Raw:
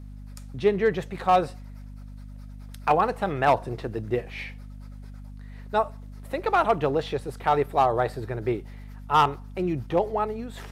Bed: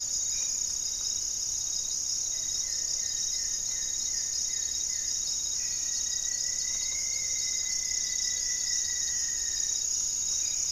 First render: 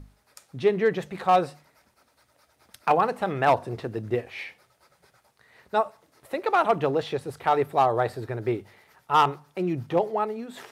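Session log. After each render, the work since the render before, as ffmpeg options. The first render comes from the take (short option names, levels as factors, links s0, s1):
-af "bandreject=f=50:t=h:w=6,bandreject=f=100:t=h:w=6,bandreject=f=150:t=h:w=6,bandreject=f=200:t=h:w=6,bandreject=f=250:t=h:w=6"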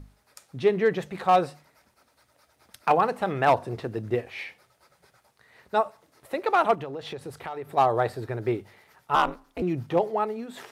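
-filter_complex "[0:a]asplit=3[s0][s1][s2];[s0]afade=t=out:st=6.74:d=0.02[s3];[s1]acompressor=threshold=0.0251:ratio=6:attack=3.2:release=140:knee=1:detection=peak,afade=t=in:st=6.74:d=0.02,afade=t=out:st=7.76:d=0.02[s4];[s2]afade=t=in:st=7.76:d=0.02[s5];[s3][s4][s5]amix=inputs=3:normalize=0,asettb=1/sr,asplit=3[s6][s7][s8];[s6]atrim=end=9.154[s9];[s7]atrim=start=9.15:end=9.62,asetpts=PTS-STARTPTS,afade=t=in:d=0.004:c=qsin,afade=t=out:st=0.466:d=0.004:c=qsin,aeval=exprs='val(0)*sin(2*PI*120*n/s)':c=same[s10];[s8]atrim=start=9.616[s11];[s9][s10]acrossfade=d=0.004:c1=hsin:c2=qsin[s12];[s12][s11]acrossfade=d=0.004:c1=qsin:c2=hsin"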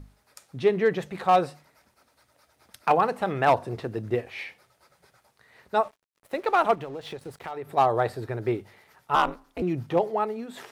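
-filter_complex "[0:a]asettb=1/sr,asplit=3[s0][s1][s2];[s0]atrim=end=5.834[s3];[s1]atrim=start=5.83:end=7.51,asetpts=PTS-STARTPTS,afade=t=in:d=0.004:c=qsin,afade=t=out:st=1.676:d=0.004:c=qsin,aeval=exprs='sgn(val(0))*max(abs(val(0))-0.00251,0)':c=same[s4];[s2]atrim=start=7.506[s5];[s3][s4]acrossfade=d=0.004:c1=hsin:c2=qsin[s6];[s6][s5]acrossfade=d=0.004:c1=qsin:c2=hsin"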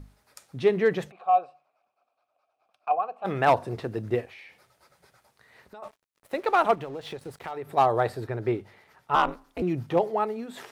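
-filter_complex "[0:a]asplit=3[s0][s1][s2];[s0]afade=t=out:st=1.1:d=0.02[s3];[s1]asplit=3[s4][s5][s6];[s4]bandpass=f=730:t=q:w=8,volume=1[s7];[s5]bandpass=f=1090:t=q:w=8,volume=0.501[s8];[s6]bandpass=f=2440:t=q:w=8,volume=0.355[s9];[s7][s8][s9]amix=inputs=3:normalize=0,afade=t=in:st=1.1:d=0.02,afade=t=out:st=3.24:d=0.02[s10];[s2]afade=t=in:st=3.24:d=0.02[s11];[s3][s10][s11]amix=inputs=3:normalize=0,asplit=3[s12][s13][s14];[s12]afade=t=out:st=4.25:d=0.02[s15];[s13]acompressor=threshold=0.00562:ratio=5:attack=3.2:release=140:knee=1:detection=peak,afade=t=in:st=4.25:d=0.02,afade=t=out:st=5.82:d=0.02[s16];[s14]afade=t=in:st=5.82:d=0.02[s17];[s15][s16][s17]amix=inputs=3:normalize=0,asettb=1/sr,asplit=3[s18][s19][s20];[s18]atrim=end=8.274[s21];[s19]atrim=start=8.27:end=9.29,asetpts=PTS-STARTPTS,afade=t=in:d=0.004:c=qsin,afade=t=out:st=1.016:d=0.004:c=qsin,highshelf=f=6200:g=-8[s22];[s20]atrim=start=9.286[s23];[s21][s22]acrossfade=d=0.004:c1=hsin:c2=qsin[s24];[s24][s23]acrossfade=d=0.004:c1=qsin:c2=hsin"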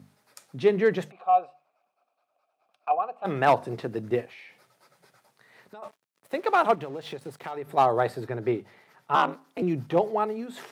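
-af "highpass=f=130:w=0.5412,highpass=f=130:w=1.3066,lowshelf=f=180:g=3"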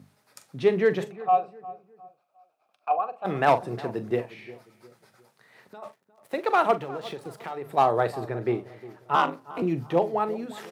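-filter_complex "[0:a]asplit=2[s0][s1];[s1]adelay=42,volume=0.224[s2];[s0][s2]amix=inputs=2:normalize=0,asplit=2[s3][s4];[s4]adelay=356,lowpass=f=1300:p=1,volume=0.141,asplit=2[s5][s6];[s6]adelay=356,lowpass=f=1300:p=1,volume=0.38,asplit=2[s7][s8];[s8]adelay=356,lowpass=f=1300:p=1,volume=0.38[s9];[s3][s5][s7][s9]amix=inputs=4:normalize=0"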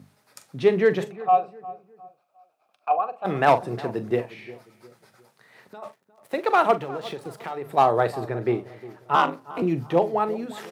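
-af "volume=1.33"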